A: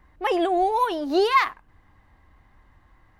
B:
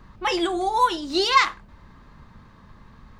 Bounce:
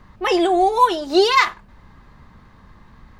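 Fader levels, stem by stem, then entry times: +2.5, +0.5 decibels; 0.00, 0.00 seconds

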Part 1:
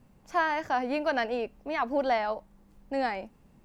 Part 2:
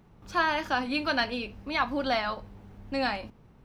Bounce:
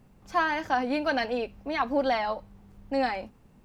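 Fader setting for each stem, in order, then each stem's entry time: +0.5, −7.5 decibels; 0.00, 0.00 seconds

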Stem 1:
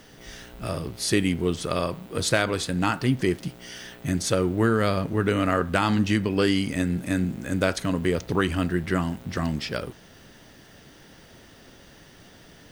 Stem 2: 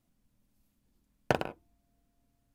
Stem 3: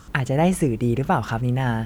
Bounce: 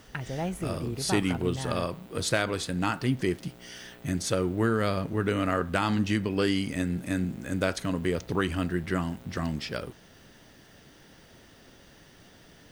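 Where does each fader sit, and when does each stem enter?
−4.0, −13.5, −13.0 decibels; 0.00, 0.00, 0.00 seconds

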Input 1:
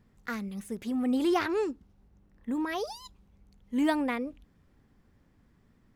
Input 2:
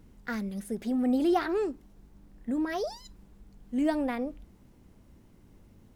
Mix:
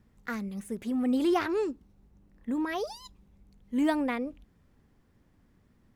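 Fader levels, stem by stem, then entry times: −1.5, −13.5 decibels; 0.00, 0.00 seconds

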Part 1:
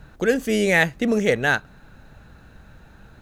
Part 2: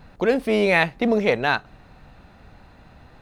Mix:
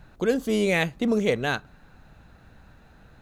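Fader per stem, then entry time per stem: −6.0, −9.5 decibels; 0.00, 0.00 seconds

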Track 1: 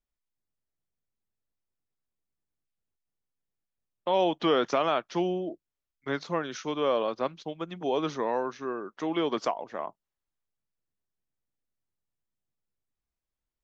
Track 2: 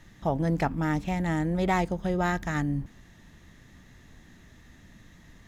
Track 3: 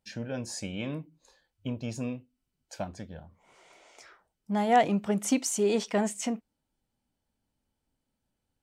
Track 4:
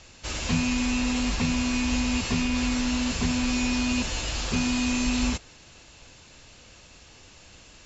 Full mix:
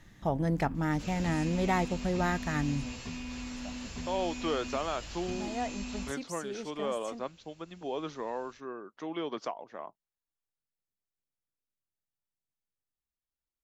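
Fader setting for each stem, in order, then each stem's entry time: −7.5, −3.0, −14.0, −14.5 decibels; 0.00, 0.00, 0.85, 0.75 seconds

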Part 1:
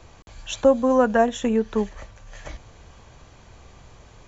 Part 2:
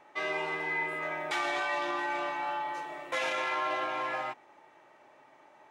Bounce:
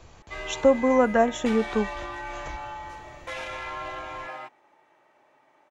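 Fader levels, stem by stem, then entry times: −2.0, −3.5 decibels; 0.00, 0.15 seconds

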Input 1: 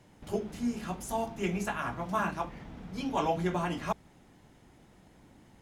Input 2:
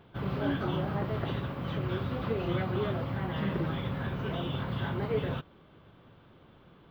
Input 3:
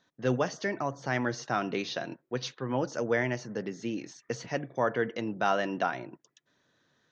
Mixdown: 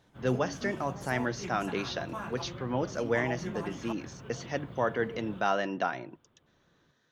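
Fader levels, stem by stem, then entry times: −9.0, −13.0, −1.0 decibels; 0.00, 0.00, 0.00 seconds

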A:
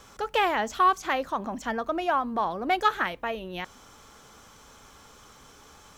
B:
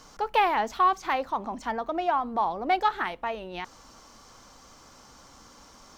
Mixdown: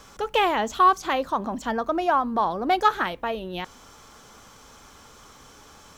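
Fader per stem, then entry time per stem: +2.0, −5.5 decibels; 0.00, 0.00 seconds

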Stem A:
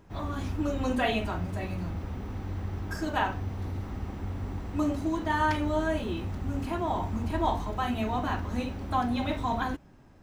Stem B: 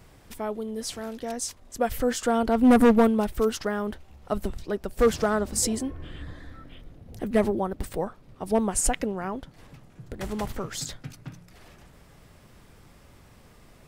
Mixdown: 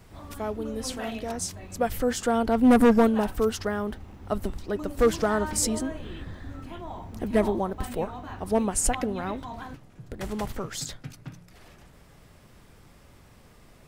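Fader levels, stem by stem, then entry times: −9.5, −0.5 decibels; 0.00, 0.00 seconds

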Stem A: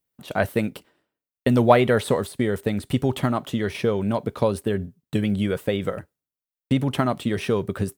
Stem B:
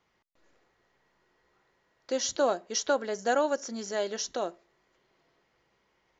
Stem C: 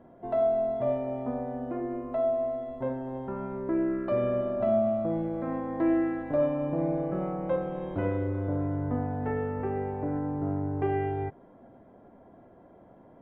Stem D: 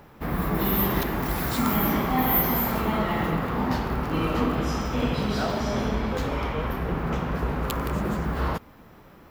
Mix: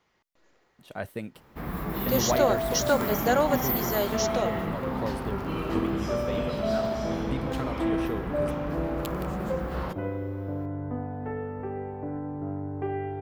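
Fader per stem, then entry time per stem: −12.5, +2.5, −3.0, −6.5 decibels; 0.60, 0.00, 2.00, 1.35 seconds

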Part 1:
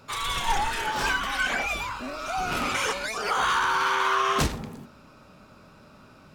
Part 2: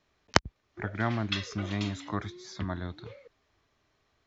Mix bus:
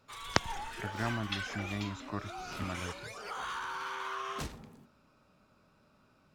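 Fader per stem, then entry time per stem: −15.0, −5.5 decibels; 0.00, 0.00 seconds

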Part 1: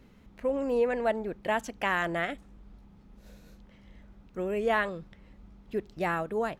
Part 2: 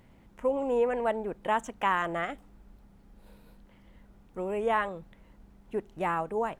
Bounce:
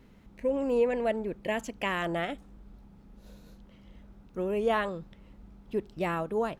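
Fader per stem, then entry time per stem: −1.5, −6.0 decibels; 0.00, 0.00 seconds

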